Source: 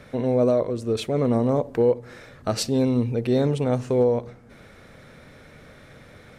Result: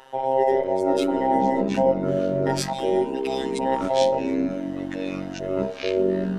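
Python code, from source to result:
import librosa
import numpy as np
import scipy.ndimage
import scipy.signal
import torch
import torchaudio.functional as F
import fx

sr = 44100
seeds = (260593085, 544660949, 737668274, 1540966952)

y = fx.band_invert(x, sr, width_hz=1000)
y = fx.robotise(y, sr, hz=133.0)
y = fx.graphic_eq(y, sr, hz=(500, 1000, 2000, 4000, 8000), db=(-10, -10, 6, 4, 8), at=(2.73, 3.59))
y = fx.echo_pitch(y, sr, ms=318, semitones=-6, count=3, db_per_echo=-3.0)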